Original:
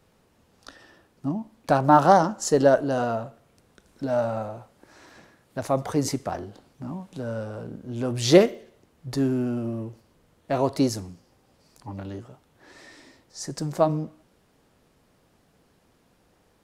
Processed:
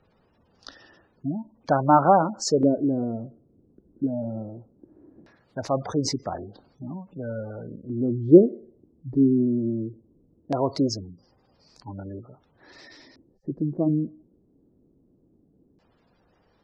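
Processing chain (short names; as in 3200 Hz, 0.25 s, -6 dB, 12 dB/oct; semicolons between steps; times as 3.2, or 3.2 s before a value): spectral gate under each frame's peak -20 dB strong; LFO low-pass square 0.19 Hz 320–5100 Hz; gain -1 dB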